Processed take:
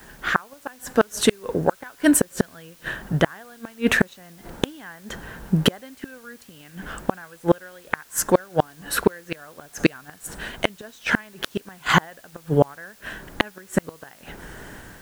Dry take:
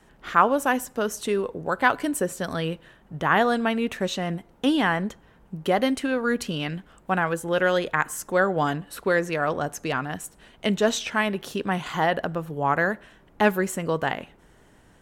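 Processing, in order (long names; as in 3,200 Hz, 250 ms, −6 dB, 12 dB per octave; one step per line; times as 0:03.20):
parametric band 1,600 Hz +8 dB 0.37 octaves
automatic gain control gain up to 14 dB
gate with flip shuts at −11 dBFS, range −36 dB
in parallel at −11 dB: bit-depth reduction 8 bits, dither triangular
on the sum: level +6 dB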